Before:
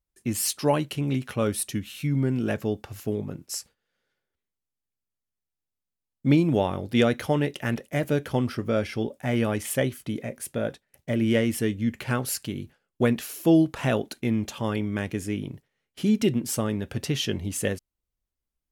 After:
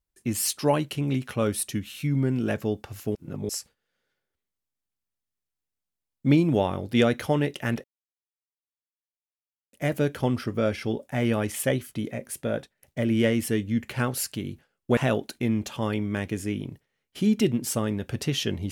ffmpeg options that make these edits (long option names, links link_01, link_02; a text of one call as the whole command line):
ffmpeg -i in.wav -filter_complex "[0:a]asplit=5[link_01][link_02][link_03][link_04][link_05];[link_01]atrim=end=3.152[link_06];[link_02]atrim=start=3.148:end=3.492,asetpts=PTS-STARTPTS,areverse[link_07];[link_03]atrim=start=3.488:end=7.84,asetpts=PTS-STARTPTS,afade=type=out:start_time=4.348:duration=0.004:curve=hsin,apad=pad_dur=1.89[link_08];[link_04]atrim=start=7.84:end=13.082,asetpts=PTS-STARTPTS,afade=type=in:duration=0.004:curve=hsin[link_09];[link_05]atrim=start=13.788[link_10];[link_06][link_07]acrossfade=duration=0.004:curve1=hsin:curve2=hsin[link_11];[link_08][link_09]concat=n=2:v=0:a=1[link_12];[link_11][link_12]acrossfade=duration=0.004:curve1=hsin:curve2=hsin[link_13];[link_13][link_10]acrossfade=duration=0.004:curve1=hsin:curve2=hsin" out.wav